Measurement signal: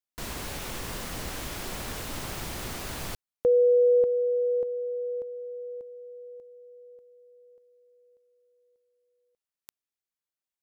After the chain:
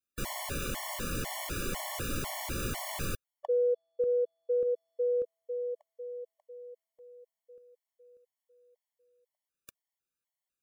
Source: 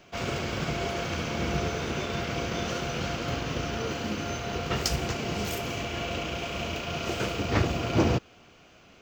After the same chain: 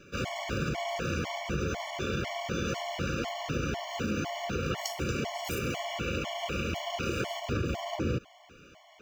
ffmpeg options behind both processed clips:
-af "equalizer=f=4.5k:t=o:w=0.79:g=-3.5,acompressor=threshold=-29dB:ratio=6:attack=4.6:release=132:knee=1:detection=peak,afftfilt=real='re*gt(sin(2*PI*2*pts/sr)*(1-2*mod(floor(b*sr/1024/580),2)),0)':imag='im*gt(sin(2*PI*2*pts/sr)*(1-2*mod(floor(b*sr/1024/580),2)),0)':win_size=1024:overlap=0.75,volume=3.5dB"

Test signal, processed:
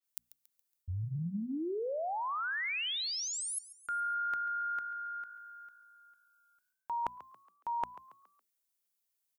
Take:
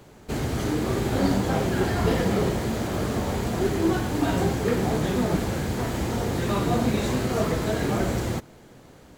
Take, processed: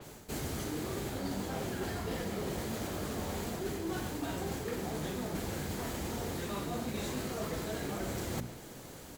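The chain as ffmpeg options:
-filter_complex "[0:a]bandreject=f=60:t=h:w=6,bandreject=f=120:t=h:w=6,bandreject=f=180:t=h:w=6,bandreject=f=240:t=h:w=6,crystalizer=i=2:c=0,areverse,acompressor=threshold=-34dB:ratio=8,areverse,asplit=5[a][b][c][d][e];[b]adelay=139,afreqshift=54,volume=-16.5dB[f];[c]adelay=278,afreqshift=108,volume=-23.8dB[g];[d]adelay=417,afreqshift=162,volume=-31.2dB[h];[e]adelay=556,afreqshift=216,volume=-38.5dB[i];[a][f][g][h][i]amix=inputs=5:normalize=0,adynamicequalizer=threshold=0.00224:dfrequency=5200:dqfactor=0.7:tfrequency=5200:tqfactor=0.7:attack=5:release=100:ratio=0.375:range=2:mode=cutabove:tftype=highshelf"

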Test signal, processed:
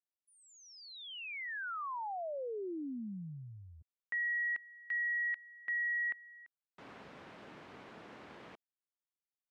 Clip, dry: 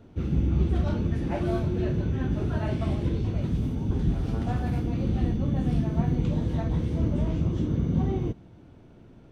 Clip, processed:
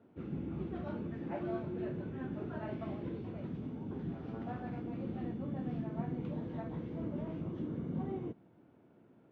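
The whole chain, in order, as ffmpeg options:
-af "highpass=190,lowpass=2.2k,volume=-8.5dB"

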